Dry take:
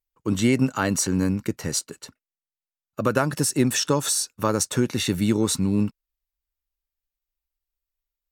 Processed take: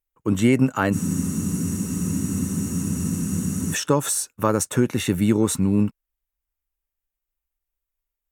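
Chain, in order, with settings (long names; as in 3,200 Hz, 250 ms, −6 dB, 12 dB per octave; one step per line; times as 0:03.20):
parametric band 4,600 Hz −11.5 dB 0.79 octaves
frozen spectrum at 0:00.96, 2.76 s
level +2.5 dB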